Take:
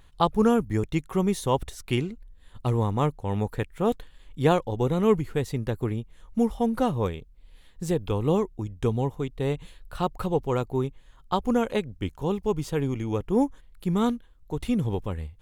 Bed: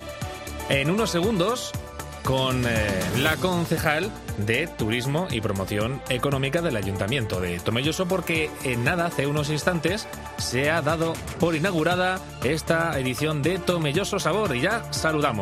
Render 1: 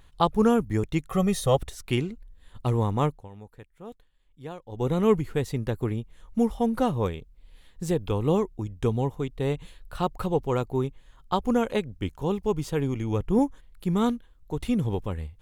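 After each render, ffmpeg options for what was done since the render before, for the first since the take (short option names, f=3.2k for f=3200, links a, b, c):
-filter_complex "[0:a]asettb=1/sr,asplit=3[a][b][c];[a]atrim=end=1.094[d];[b]atrim=start=1.09:end=1.57,asetpts=PTS-STARTPTS,afade=t=in:d=0.004:c=qsin,afade=t=out:st=0.476:d=0.004:c=qsin,aecho=1:1:1.6:0.95,atrim=end_sample=21168[e];[c]atrim=start=1.566[f];[d][e]acrossfade=d=0.004:c1=hsin:c2=qsin[g];[g][f]acrossfade=d=0.004:c1=qsin:c2=hsin,asettb=1/sr,asplit=3[h][i][j];[h]atrim=end=12.954[k];[i]atrim=start=12.95:end=13.39,asetpts=PTS-STARTPTS,afade=t=in:d=0.004:c=qsin,afade=t=out:st=0.436:d=0.004:c=qsin,asubboost=boost=9:cutoff=240[l];[j]atrim=start=13.386[m];[k][l]acrossfade=d=0.004:c1=hsin:c2=qsin[n];[n][m]acrossfade=d=0.004:c1=qsin:c2=hsin,asplit=3[o][p][q];[o]atrim=end=3.29,asetpts=PTS-STARTPTS,afade=t=out:st=3.05:d=0.24:silence=0.125893[r];[p]atrim=start=3.29:end=4.66,asetpts=PTS-STARTPTS,volume=-18dB[s];[q]atrim=start=4.66,asetpts=PTS-STARTPTS,afade=t=in:d=0.24:silence=0.125893[t];[r][s][t]concat=n=3:v=0:a=1"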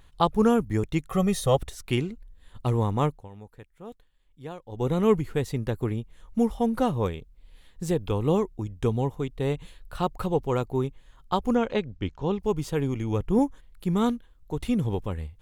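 -filter_complex "[0:a]asettb=1/sr,asplit=3[a][b][c];[a]atrim=end=11.554[d];[b]atrim=start=11.55:end=12.4,asetpts=PTS-STARTPTS,afade=t=in:d=0.004:c=qsin,afade=t=out:st=0.846:d=0.004:c=qsin,lowpass=f=5.8k:w=0.5412,lowpass=f=5.8k:w=1.3066[e];[c]atrim=start=12.396[f];[d][e]acrossfade=d=0.004:c1=hsin:c2=qsin[g];[g][f]acrossfade=d=0.004:c1=qsin:c2=hsin"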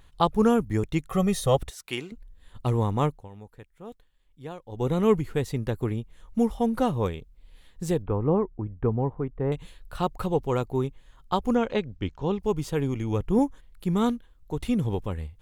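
-filter_complex "[0:a]asettb=1/sr,asplit=3[a][b][c];[a]atrim=end=1.704[d];[b]atrim=start=1.7:end=2.12,asetpts=PTS-STARTPTS,afade=t=in:d=0.004:c=qsin,afade=t=out:st=0.416:d=0.004:c=qsin,highpass=f=700:p=1[e];[c]atrim=start=2.116[f];[d][e]acrossfade=d=0.004:c1=hsin:c2=qsin[g];[g][f]acrossfade=d=0.004:c1=qsin:c2=hsin,asettb=1/sr,asplit=3[h][i][j];[h]atrim=end=8.024[k];[i]atrim=start=8.02:end=9.52,asetpts=PTS-STARTPTS,afade=t=in:d=0.004:c=qsin,afade=t=out:st=1.496:d=0.004:c=qsin,lowpass=f=1.7k:w=0.5412,lowpass=f=1.7k:w=1.3066[l];[j]atrim=start=9.516[m];[k][l]acrossfade=d=0.004:c1=hsin:c2=qsin[n];[n][m]acrossfade=d=0.004:c1=qsin:c2=hsin"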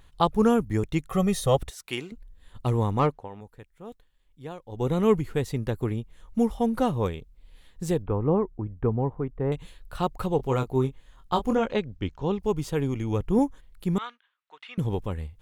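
-filter_complex "[0:a]asettb=1/sr,asplit=3[a][b][c];[a]atrim=end=2.994[d];[b]atrim=start=2.99:end=3.41,asetpts=PTS-STARTPTS,afade=t=in:d=0.004:c=qsin,afade=t=out:st=0.416:d=0.004:c=qsin,asplit=2[e][f];[f]highpass=f=720:p=1,volume=18dB,asoftclip=type=tanh:threshold=-10.5dB[g];[e][g]amix=inputs=2:normalize=0,lowpass=f=1.1k:p=1,volume=-6dB[h];[c]atrim=start=3.406[i];[d][h]acrossfade=d=0.004:c1=hsin:c2=qsin[j];[j][i]acrossfade=d=0.004:c1=qsin:c2=hsin,asettb=1/sr,asplit=3[k][l][m];[k]atrim=end=10.374[n];[l]atrim=start=10.37:end=11.66,asetpts=PTS-STARTPTS,afade=t=in:d=0.004:c=qsin,afade=t=out:st=1.286:d=0.004:c=qsin,asplit=2[o][p];[p]adelay=23,volume=-7dB[q];[o][q]amix=inputs=2:normalize=0,atrim=end_sample=56889[r];[m]atrim=start=11.656[s];[n][r]acrossfade=d=0.004:c1=hsin:c2=qsin[t];[t][s]acrossfade=d=0.004:c1=qsin:c2=hsin,asettb=1/sr,asplit=3[u][v][w];[u]atrim=end=13.984[x];[v]atrim=start=13.98:end=14.78,asetpts=PTS-STARTPTS,afade=t=in:d=0.004:c=qsin,afade=t=out:st=0.796:d=0.004:c=qsin,asuperpass=centerf=2000:order=4:qfactor=0.92[y];[w]atrim=start=14.776[z];[x][y]acrossfade=d=0.004:c1=hsin:c2=qsin[aa];[aa][z]acrossfade=d=0.004:c1=qsin:c2=hsin"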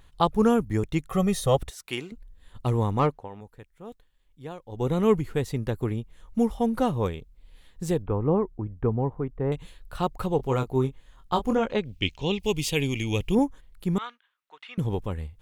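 -filter_complex "[0:a]asettb=1/sr,asplit=3[a][b][c];[a]atrim=end=11.854[d];[b]atrim=start=11.85:end=13.35,asetpts=PTS-STARTPTS,afade=t=in:d=0.004:c=qsin,afade=t=out:st=1.496:d=0.004:c=qsin,highshelf=f=1.9k:t=q:w=3:g=10[e];[c]atrim=start=13.346[f];[d][e]acrossfade=d=0.004:c1=hsin:c2=qsin[g];[g][f]acrossfade=d=0.004:c1=qsin:c2=hsin"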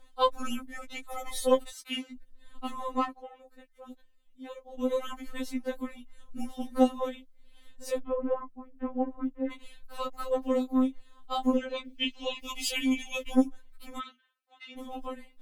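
-filter_complex "[0:a]acrossover=split=720|5900[a][b][c];[a]asoftclip=type=tanh:threshold=-20.5dB[d];[d][b][c]amix=inputs=3:normalize=0,afftfilt=real='re*3.46*eq(mod(b,12),0)':imag='im*3.46*eq(mod(b,12),0)':win_size=2048:overlap=0.75"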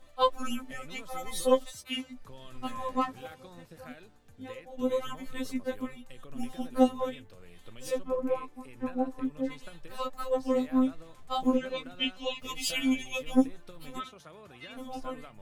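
-filter_complex "[1:a]volume=-27.5dB[a];[0:a][a]amix=inputs=2:normalize=0"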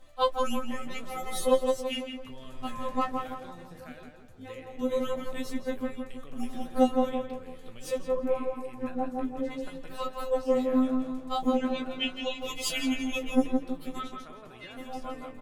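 -filter_complex "[0:a]asplit=2[a][b];[b]adelay=17,volume=-11dB[c];[a][c]amix=inputs=2:normalize=0,asplit=2[d][e];[e]adelay=166,lowpass=f=2.1k:p=1,volume=-4dB,asplit=2[f][g];[g]adelay=166,lowpass=f=2.1k:p=1,volume=0.46,asplit=2[h][i];[i]adelay=166,lowpass=f=2.1k:p=1,volume=0.46,asplit=2[j][k];[k]adelay=166,lowpass=f=2.1k:p=1,volume=0.46,asplit=2[l][m];[m]adelay=166,lowpass=f=2.1k:p=1,volume=0.46,asplit=2[n][o];[o]adelay=166,lowpass=f=2.1k:p=1,volume=0.46[p];[d][f][h][j][l][n][p]amix=inputs=7:normalize=0"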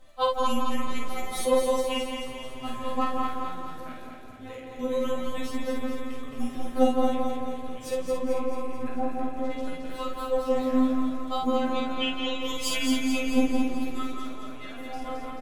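-filter_complex "[0:a]asplit=2[a][b];[b]adelay=50,volume=-4dB[c];[a][c]amix=inputs=2:normalize=0,aecho=1:1:219|438|657|876|1095|1314|1533|1752:0.562|0.326|0.189|0.11|0.0636|0.0369|0.0214|0.0124"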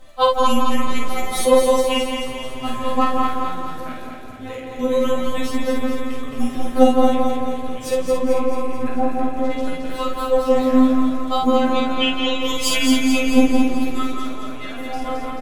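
-af "volume=9dB,alimiter=limit=-2dB:level=0:latency=1"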